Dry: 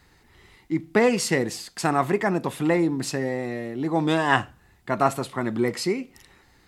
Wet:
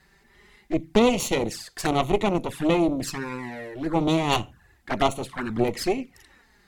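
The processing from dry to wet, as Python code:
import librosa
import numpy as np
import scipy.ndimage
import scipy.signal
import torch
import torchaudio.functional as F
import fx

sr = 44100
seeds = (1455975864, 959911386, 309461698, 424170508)

y = fx.cheby_harmonics(x, sr, harmonics=(5, 8), levels_db=(-33, -14), full_scale_db=-3.5)
y = fx.env_flanger(y, sr, rest_ms=5.4, full_db=-20.0)
y = fx.peak_eq(y, sr, hz=1700.0, db=5.0, octaves=0.34)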